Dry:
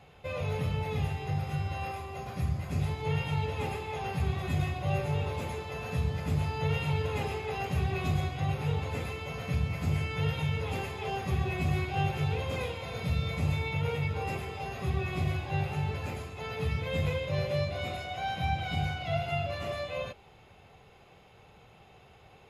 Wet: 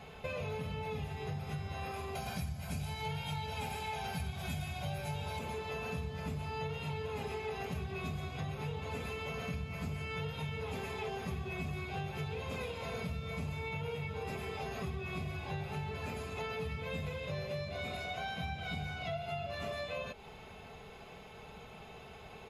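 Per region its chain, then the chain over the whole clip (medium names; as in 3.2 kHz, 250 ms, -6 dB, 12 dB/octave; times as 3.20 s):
2.15–5.39 s: treble shelf 3.2 kHz +11 dB + comb 1.3 ms, depth 52%
whole clip: band-stop 1.9 kHz, Q 30; comb 4.6 ms, depth 44%; compression, threshold -42 dBFS; trim +5 dB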